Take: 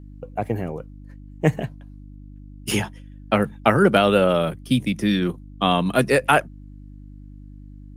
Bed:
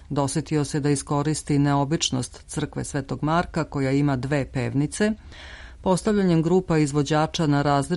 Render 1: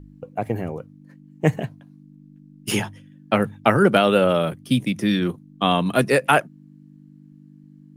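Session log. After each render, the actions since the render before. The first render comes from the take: de-hum 50 Hz, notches 2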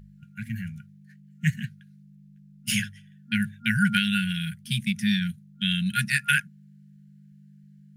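FFT band-reject 230–1400 Hz; low shelf 140 Hz -7 dB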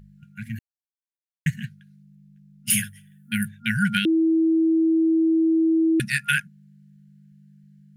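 0.59–1.46 mute; 2.7–3.48 resonant high shelf 7900 Hz +12 dB, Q 1.5; 4.05–6 bleep 324 Hz -16 dBFS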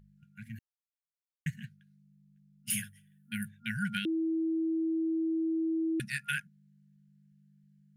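gain -11.5 dB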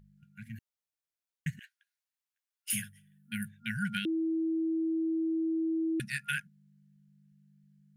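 1.59–2.73 steep high-pass 730 Hz

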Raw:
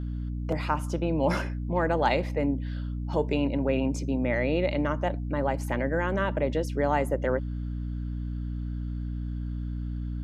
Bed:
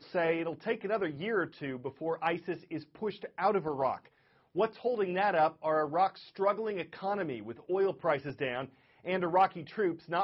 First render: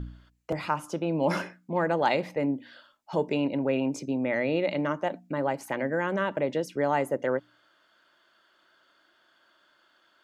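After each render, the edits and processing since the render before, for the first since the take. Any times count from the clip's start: de-hum 60 Hz, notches 5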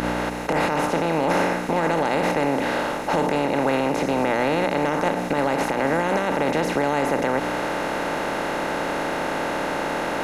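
per-bin compression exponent 0.2; limiter -11.5 dBFS, peak gain reduction 8 dB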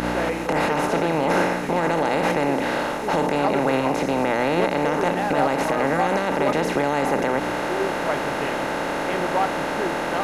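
add bed +2.5 dB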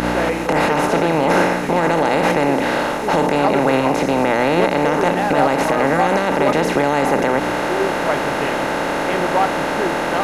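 gain +5 dB

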